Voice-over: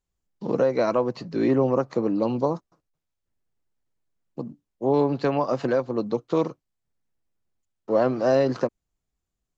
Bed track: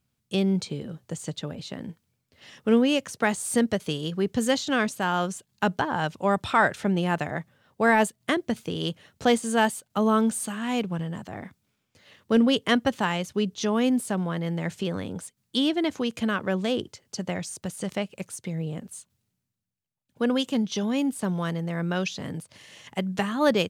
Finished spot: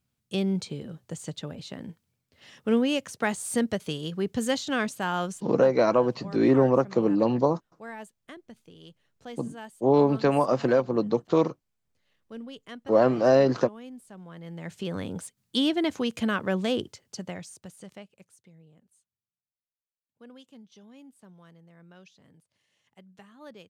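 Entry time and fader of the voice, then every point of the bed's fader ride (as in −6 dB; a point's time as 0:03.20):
5.00 s, +1.0 dB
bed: 0:05.32 −3 dB
0:05.78 −20.5 dB
0:14.08 −20.5 dB
0:15.02 −0.5 dB
0:16.85 −0.5 dB
0:18.66 −25 dB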